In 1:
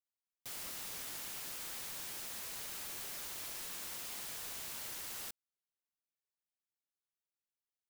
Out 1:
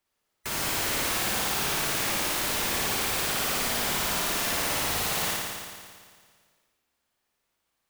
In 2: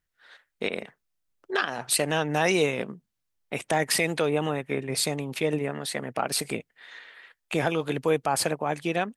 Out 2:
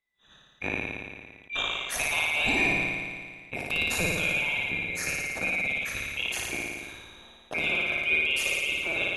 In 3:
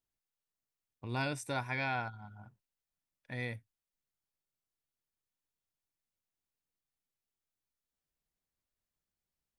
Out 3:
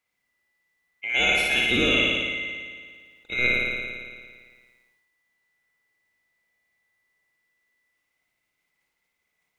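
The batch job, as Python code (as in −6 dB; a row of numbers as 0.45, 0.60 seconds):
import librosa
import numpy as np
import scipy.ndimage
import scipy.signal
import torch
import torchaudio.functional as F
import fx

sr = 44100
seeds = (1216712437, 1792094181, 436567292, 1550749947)

y = fx.band_swap(x, sr, width_hz=2000)
y = fx.high_shelf(y, sr, hz=3600.0, db=-9.5)
y = fx.room_flutter(y, sr, wall_m=9.7, rt60_s=1.5)
y = fx.sustainer(y, sr, db_per_s=33.0)
y = y * 10.0 ** (-30 / 20.0) / np.sqrt(np.mean(np.square(y)))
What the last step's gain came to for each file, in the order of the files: +19.0, −2.5, +13.5 decibels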